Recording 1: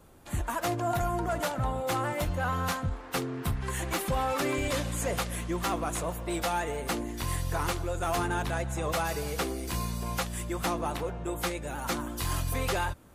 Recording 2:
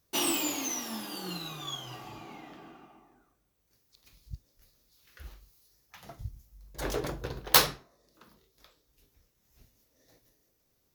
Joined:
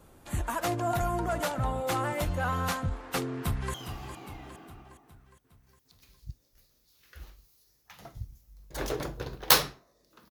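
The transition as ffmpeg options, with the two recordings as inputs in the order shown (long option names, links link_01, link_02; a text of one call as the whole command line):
ffmpeg -i cue0.wav -i cue1.wav -filter_complex "[0:a]apad=whole_dur=10.3,atrim=end=10.3,atrim=end=3.742[link_01];[1:a]atrim=start=1.778:end=8.34[link_02];[link_01][link_02]acrossfade=duration=0.004:curve1=hsin:curve2=hsin,asplit=2[link_03][link_04];[link_04]afade=type=in:start_time=3.39:duration=0.01,afade=type=out:start_time=3.74:duration=0.01,aecho=0:1:410|820|1230|1640|2050|2460:0.316228|0.173925|0.0956589|0.0526124|0.0289368|0.0159152[link_05];[link_03][link_05]amix=inputs=2:normalize=0" out.wav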